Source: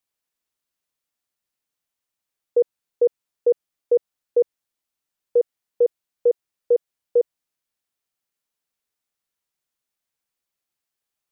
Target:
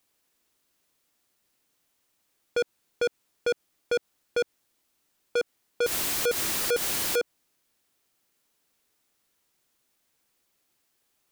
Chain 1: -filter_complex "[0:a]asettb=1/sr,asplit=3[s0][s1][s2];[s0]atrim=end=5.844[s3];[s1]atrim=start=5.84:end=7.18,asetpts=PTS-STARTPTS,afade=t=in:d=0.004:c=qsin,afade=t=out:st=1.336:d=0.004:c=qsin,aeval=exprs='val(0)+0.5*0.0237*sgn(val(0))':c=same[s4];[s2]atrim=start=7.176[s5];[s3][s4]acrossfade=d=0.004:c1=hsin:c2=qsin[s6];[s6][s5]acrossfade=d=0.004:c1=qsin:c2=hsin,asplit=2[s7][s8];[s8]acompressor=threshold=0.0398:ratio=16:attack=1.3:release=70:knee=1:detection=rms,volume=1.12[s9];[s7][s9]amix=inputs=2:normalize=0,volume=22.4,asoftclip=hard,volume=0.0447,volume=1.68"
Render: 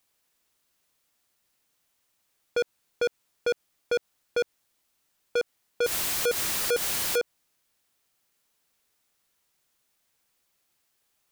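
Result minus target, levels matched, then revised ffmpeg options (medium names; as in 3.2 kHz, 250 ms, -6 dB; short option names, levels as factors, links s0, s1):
250 Hz band -3.0 dB
-filter_complex "[0:a]asettb=1/sr,asplit=3[s0][s1][s2];[s0]atrim=end=5.844[s3];[s1]atrim=start=5.84:end=7.18,asetpts=PTS-STARTPTS,afade=t=in:d=0.004:c=qsin,afade=t=out:st=1.336:d=0.004:c=qsin,aeval=exprs='val(0)+0.5*0.0237*sgn(val(0))':c=same[s4];[s2]atrim=start=7.176[s5];[s3][s4]acrossfade=d=0.004:c1=hsin:c2=qsin[s6];[s6][s5]acrossfade=d=0.004:c1=qsin:c2=hsin,asplit=2[s7][s8];[s8]acompressor=threshold=0.0398:ratio=16:attack=1.3:release=70:knee=1:detection=rms,equalizer=f=310:w=1:g=8,volume=1.12[s9];[s7][s9]amix=inputs=2:normalize=0,volume=22.4,asoftclip=hard,volume=0.0447,volume=1.68"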